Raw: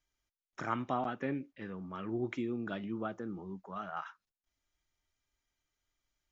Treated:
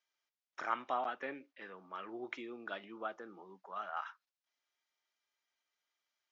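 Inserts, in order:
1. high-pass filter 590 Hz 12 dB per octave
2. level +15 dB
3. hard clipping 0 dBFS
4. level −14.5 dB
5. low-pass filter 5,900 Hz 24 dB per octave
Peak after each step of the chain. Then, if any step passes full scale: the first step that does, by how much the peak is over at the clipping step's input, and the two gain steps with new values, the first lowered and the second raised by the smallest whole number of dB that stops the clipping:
−19.5, −4.5, −4.5, −19.0, −19.0 dBFS
no step passes full scale

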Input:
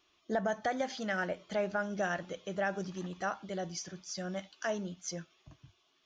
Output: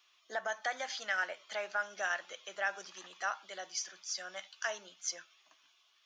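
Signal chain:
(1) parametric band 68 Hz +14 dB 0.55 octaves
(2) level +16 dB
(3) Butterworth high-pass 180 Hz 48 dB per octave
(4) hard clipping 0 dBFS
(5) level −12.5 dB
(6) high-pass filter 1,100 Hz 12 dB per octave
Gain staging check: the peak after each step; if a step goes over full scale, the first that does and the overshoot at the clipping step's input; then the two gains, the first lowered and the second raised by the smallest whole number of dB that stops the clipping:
−21.5, −5.5, −3.0, −3.0, −15.5, −21.0 dBFS
no step passes full scale

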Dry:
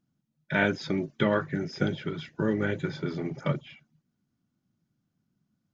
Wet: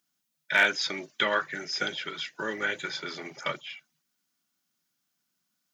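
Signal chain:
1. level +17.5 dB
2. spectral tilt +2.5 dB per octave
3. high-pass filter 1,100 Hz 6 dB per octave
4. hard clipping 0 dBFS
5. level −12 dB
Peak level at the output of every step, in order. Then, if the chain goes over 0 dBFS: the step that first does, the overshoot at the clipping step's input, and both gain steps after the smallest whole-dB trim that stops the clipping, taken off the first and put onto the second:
+7.5, +7.5, +4.0, 0.0, −12.0 dBFS
step 1, 4.0 dB
step 1 +13.5 dB, step 5 −8 dB

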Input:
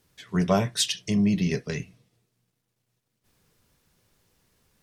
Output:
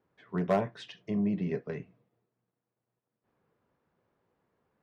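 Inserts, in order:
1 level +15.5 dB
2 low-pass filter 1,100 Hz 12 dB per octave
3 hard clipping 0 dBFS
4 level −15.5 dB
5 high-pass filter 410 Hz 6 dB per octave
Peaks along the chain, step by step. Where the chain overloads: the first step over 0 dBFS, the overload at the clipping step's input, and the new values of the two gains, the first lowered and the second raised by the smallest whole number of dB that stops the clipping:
+7.0, +6.0, 0.0, −15.5, −15.0 dBFS
step 1, 6.0 dB
step 1 +9.5 dB, step 4 −9.5 dB

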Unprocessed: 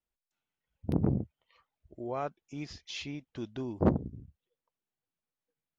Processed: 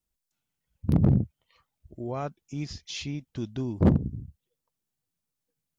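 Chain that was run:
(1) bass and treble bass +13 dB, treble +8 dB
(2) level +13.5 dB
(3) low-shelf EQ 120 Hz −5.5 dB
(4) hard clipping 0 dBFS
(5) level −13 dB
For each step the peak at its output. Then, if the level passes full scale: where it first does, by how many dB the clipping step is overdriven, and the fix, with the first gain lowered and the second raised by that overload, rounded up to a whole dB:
−5.5, +8.0, +6.5, 0.0, −13.0 dBFS
step 2, 6.5 dB
step 2 +6.5 dB, step 5 −6 dB

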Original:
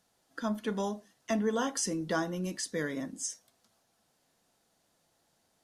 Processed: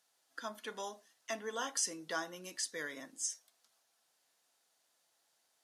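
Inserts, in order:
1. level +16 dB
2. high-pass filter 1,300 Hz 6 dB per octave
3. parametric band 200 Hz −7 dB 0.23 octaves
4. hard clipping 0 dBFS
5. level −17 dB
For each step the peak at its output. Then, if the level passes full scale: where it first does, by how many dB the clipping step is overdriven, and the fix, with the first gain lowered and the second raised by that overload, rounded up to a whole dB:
−2.0, −4.5, −4.5, −4.5, −21.5 dBFS
no step passes full scale

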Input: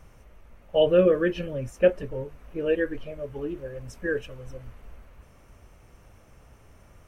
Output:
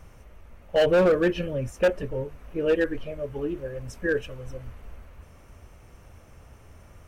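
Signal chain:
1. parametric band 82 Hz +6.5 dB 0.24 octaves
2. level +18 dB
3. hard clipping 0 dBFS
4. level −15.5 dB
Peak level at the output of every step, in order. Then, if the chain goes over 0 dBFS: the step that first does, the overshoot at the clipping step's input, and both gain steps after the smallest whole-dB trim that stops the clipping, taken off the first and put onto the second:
−8.0, +10.0, 0.0, −15.5 dBFS
step 2, 10.0 dB
step 2 +8 dB, step 4 −5.5 dB

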